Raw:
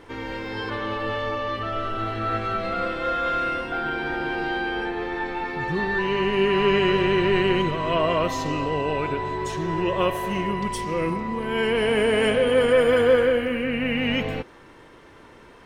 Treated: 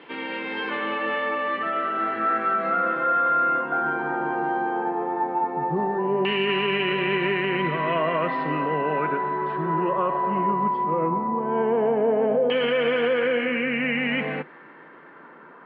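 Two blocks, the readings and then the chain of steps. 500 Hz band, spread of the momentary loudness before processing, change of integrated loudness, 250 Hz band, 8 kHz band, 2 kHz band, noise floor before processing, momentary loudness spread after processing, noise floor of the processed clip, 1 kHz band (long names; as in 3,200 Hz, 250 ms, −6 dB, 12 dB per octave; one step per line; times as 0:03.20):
−2.0 dB, 9 LU, 0.0 dB, −1.5 dB, below −35 dB, 0.0 dB, −48 dBFS, 5 LU, −47 dBFS, +3.5 dB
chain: auto-filter low-pass saw down 0.16 Hz 700–2,900 Hz
Chebyshev band-pass filter 150–4,800 Hz, order 5
brickwall limiter −14.5 dBFS, peak gain reduction 8 dB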